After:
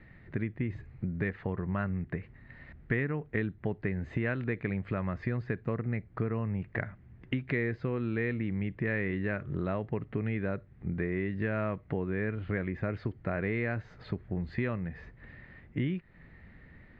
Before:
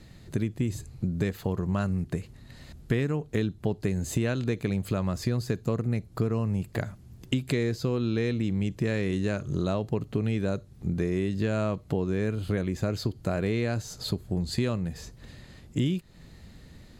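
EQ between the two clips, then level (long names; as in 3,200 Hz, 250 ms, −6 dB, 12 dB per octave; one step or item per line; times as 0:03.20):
transistor ladder low-pass 2,200 Hz, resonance 60%
+5.5 dB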